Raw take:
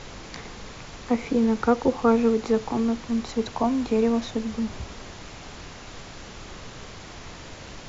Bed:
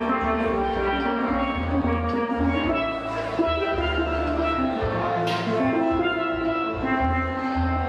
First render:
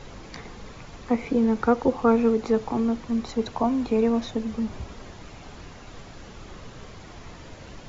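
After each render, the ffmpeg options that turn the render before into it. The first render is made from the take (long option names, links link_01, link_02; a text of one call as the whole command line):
ffmpeg -i in.wav -af "afftdn=noise_reduction=7:noise_floor=-42" out.wav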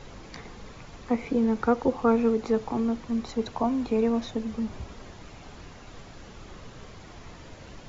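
ffmpeg -i in.wav -af "volume=-2.5dB" out.wav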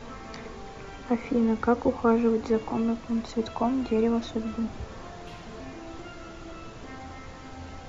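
ffmpeg -i in.wav -i bed.wav -filter_complex "[1:a]volume=-20.5dB[link_01];[0:a][link_01]amix=inputs=2:normalize=0" out.wav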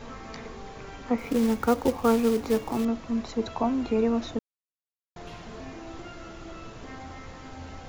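ffmpeg -i in.wav -filter_complex "[0:a]asettb=1/sr,asplit=3[link_01][link_02][link_03];[link_01]atrim=end=1.184[link_04];[link_02]atrim=start=1.18:end=2.85,asetpts=PTS-STARTPTS,afade=type=in:duration=0.004:curve=qsin,afade=type=out:start_time=1.666:duration=0.004:curve=qsin,acrusher=bits=4:mode=log:mix=0:aa=0.000001[link_05];[link_03]atrim=start=2.846[link_06];[link_04][link_05]acrossfade=duration=0.004:curve1=hsin:curve2=qsin[link_07];[link_07][link_06]acrossfade=duration=0.004:curve1=qsin:curve2=hsin,asplit=3[link_08][link_09][link_10];[link_08]atrim=end=4.39,asetpts=PTS-STARTPTS,afade=type=out:start_time=4.386:duration=0.004:curve=hsin[link_11];[link_09]atrim=start=4.39:end=5.16,asetpts=PTS-STARTPTS,volume=0[link_12];[link_10]atrim=start=5.16,asetpts=PTS-STARTPTS,afade=type=in:duration=0.004:curve=hsin[link_13];[link_11][link_12][link_13]concat=n=3:v=0:a=1" out.wav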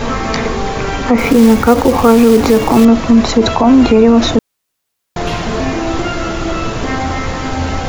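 ffmpeg -i in.wav -af "acontrast=74,alimiter=level_in=17dB:limit=-1dB:release=50:level=0:latency=1" out.wav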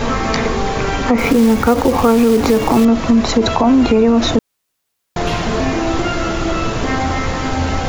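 ffmpeg -i in.wav -af "acompressor=threshold=-11dB:ratio=2" out.wav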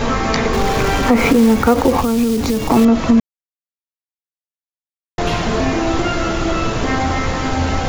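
ffmpeg -i in.wav -filter_complex "[0:a]asettb=1/sr,asplit=3[link_01][link_02][link_03];[link_01]atrim=end=0.534[link_04];[link_02]atrim=start=0.53:end=1.32,asetpts=PTS-STARTPTS,afade=type=in:duration=0.004:curve=qsin,afade=type=out:start_time=0.786:duration=0.004:curve=qsin,aeval=exprs='val(0)+0.5*0.0794*sgn(val(0))':channel_layout=same[link_05];[link_03]atrim=start=1.316[link_06];[link_04][link_05]acrossfade=duration=0.004:curve1=hsin:curve2=qsin[link_07];[link_07][link_06]acrossfade=duration=0.004:curve1=qsin:curve2=hsin,asettb=1/sr,asplit=3[link_08][link_09][link_10];[link_08]atrim=end=2.014[link_11];[link_09]atrim=start=2.01:end=2.7,asetpts=PTS-STARTPTS,afade=type=in:duration=0.004:curve=qsin,afade=type=out:start_time=0.686:duration=0.004:curve=qsin,acrossover=split=250|3000[link_12][link_13][link_14];[link_13]acompressor=threshold=-29dB:ratio=2:attack=3.2:release=140:knee=2.83:detection=peak[link_15];[link_12][link_15][link_14]amix=inputs=3:normalize=0[link_16];[link_10]atrim=start=2.696[link_17];[link_11][link_16]acrossfade=duration=0.004:curve1=hsin:curve2=qsin[link_18];[link_18][link_17]acrossfade=duration=0.004:curve1=qsin:curve2=hsin,asplit=3[link_19][link_20][link_21];[link_19]atrim=end=3.2,asetpts=PTS-STARTPTS,afade=type=out:start_time=3.196:duration=0.004:curve=hsin[link_22];[link_20]atrim=start=3.2:end=5.18,asetpts=PTS-STARTPTS,volume=0[link_23];[link_21]atrim=start=5.18,asetpts=PTS-STARTPTS,afade=type=in:duration=0.004:curve=hsin[link_24];[link_22][link_23][link_24]concat=n=3:v=0:a=1" out.wav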